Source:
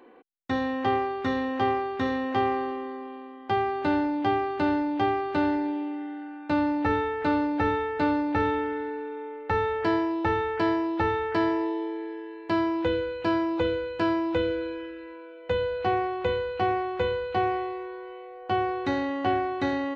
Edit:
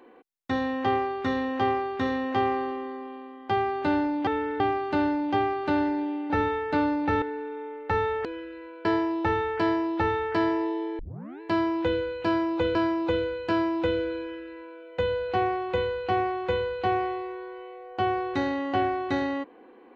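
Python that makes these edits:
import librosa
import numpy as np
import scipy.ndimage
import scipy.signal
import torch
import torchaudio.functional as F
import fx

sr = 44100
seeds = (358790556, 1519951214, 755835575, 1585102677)

y = fx.edit(x, sr, fx.cut(start_s=5.97, length_s=1.6),
    fx.move(start_s=8.49, length_s=0.33, to_s=4.27),
    fx.tape_start(start_s=11.99, length_s=0.42),
    fx.repeat(start_s=13.26, length_s=0.49, count=2),
    fx.duplicate(start_s=14.71, length_s=0.6, to_s=9.85), tone=tone)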